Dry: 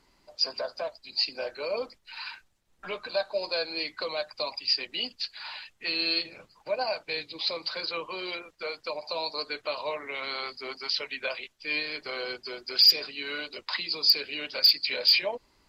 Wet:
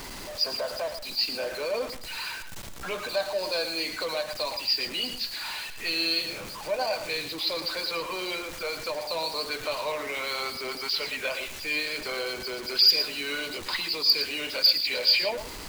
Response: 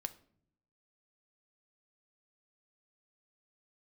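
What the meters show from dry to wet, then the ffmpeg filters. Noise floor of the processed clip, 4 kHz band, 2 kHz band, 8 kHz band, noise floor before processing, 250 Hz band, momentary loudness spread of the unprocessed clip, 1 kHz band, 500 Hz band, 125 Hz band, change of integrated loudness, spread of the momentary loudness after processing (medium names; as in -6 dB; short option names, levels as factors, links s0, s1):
-39 dBFS, +1.0 dB, +2.5 dB, no reading, -67 dBFS, +4.0 dB, 16 LU, +3.0 dB, +2.0 dB, +8.0 dB, +1.0 dB, 12 LU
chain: -filter_complex "[0:a]aeval=exprs='val(0)+0.5*0.0224*sgn(val(0))':c=same,asplit=2[s0][s1];[1:a]atrim=start_sample=2205,adelay=113[s2];[s1][s2]afir=irnorm=-1:irlink=0,volume=0.398[s3];[s0][s3]amix=inputs=2:normalize=0,volume=0.891"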